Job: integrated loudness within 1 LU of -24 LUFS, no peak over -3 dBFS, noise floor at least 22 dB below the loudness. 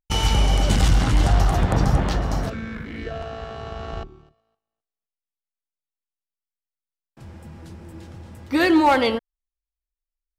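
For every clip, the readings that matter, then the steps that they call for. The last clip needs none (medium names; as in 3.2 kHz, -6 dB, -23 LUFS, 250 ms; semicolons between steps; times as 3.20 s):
loudness -20.5 LUFS; peak level -7.0 dBFS; loudness target -24.0 LUFS
-> trim -3.5 dB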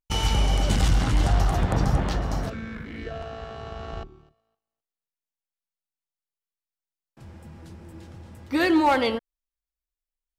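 loudness -24.0 LUFS; peak level -10.5 dBFS; noise floor -92 dBFS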